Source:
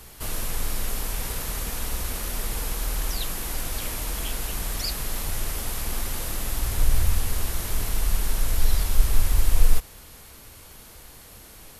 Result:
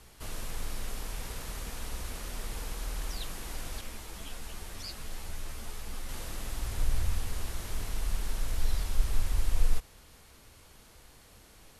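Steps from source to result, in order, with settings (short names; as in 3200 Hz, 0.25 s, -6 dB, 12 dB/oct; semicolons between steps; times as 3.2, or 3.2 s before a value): Bessel low-pass 8600 Hz, order 2; 3.81–6.09 ensemble effect; gain -8 dB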